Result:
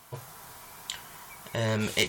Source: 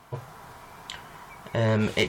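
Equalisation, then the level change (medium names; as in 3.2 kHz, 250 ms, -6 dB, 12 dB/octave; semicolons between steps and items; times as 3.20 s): pre-emphasis filter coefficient 0.8; +8.5 dB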